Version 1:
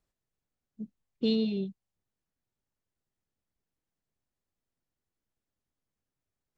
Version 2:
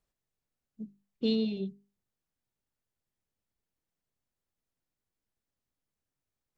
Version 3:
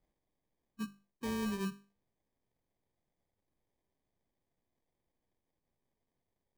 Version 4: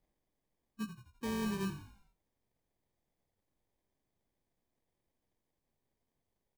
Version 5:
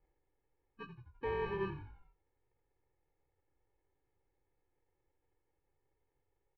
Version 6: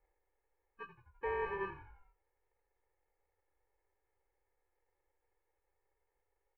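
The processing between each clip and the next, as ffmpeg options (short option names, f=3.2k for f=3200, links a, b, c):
-af "bandreject=f=50:t=h:w=6,bandreject=f=100:t=h:w=6,bandreject=f=150:t=h:w=6,bandreject=f=200:t=h:w=6,bandreject=f=250:t=h:w=6,bandreject=f=300:t=h:w=6,bandreject=f=350:t=h:w=6,bandreject=f=400:t=h:w=6,volume=-1dB"
-af "areverse,acompressor=threshold=-36dB:ratio=16,areverse,acrusher=samples=32:mix=1:aa=0.000001,volume=3dB"
-filter_complex "[0:a]asplit=6[a][b][c][d][e][f];[b]adelay=85,afreqshift=-46,volume=-11.5dB[g];[c]adelay=170,afreqshift=-92,volume=-17.9dB[h];[d]adelay=255,afreqshift=-138,volume=-24.3dB[i];[e]adelay=340,afreqshift=-184,volume=-30.6dB[j];[f]adelay=425,afreqshift=-230,volume=-37dB[k];[a][g][h][i][j][k]amix=inputs=6:normalize=0"
-af "lowpass=f=2.4k:w=0.5412,lowpass=f=2.4k:w=1.3066,aecho=1:1:2.3:0.95"
-af "equalizer=f=125:t=o:w=1:g=-9,equalizer=f=250:t=o:w=1:g=-11,equalizer=f=500:t=o:w=1:g=5,equalizer=f=1k:t=o:w=1:g=3,equalizer=f=2k:t=o:w=1:g=7,equalizer=f=4k:t=o:w=1:g=-11,volume=-2dB"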